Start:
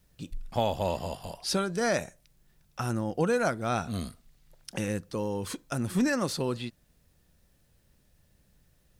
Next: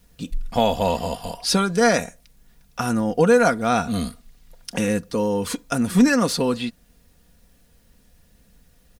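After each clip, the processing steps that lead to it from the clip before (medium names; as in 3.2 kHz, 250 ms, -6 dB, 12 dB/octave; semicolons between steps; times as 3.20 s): comb 4.2 ms, depth 53%; trim +8 dB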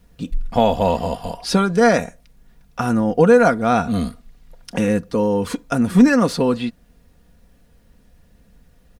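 treble shelf 2.9 kHz -10 dB; trim +4 dB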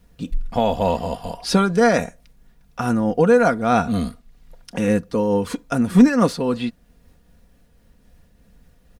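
random flutter of the level, depth 60%; trim +1.5 dB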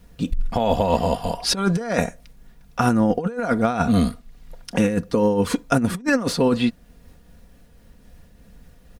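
compressor with a negative ratio -20 dBFS, ratio -0.5; trim +1.5 dB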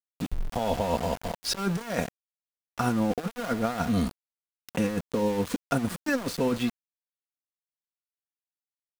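small samples zeroed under -25.5 dBFS; trim -7.5 dB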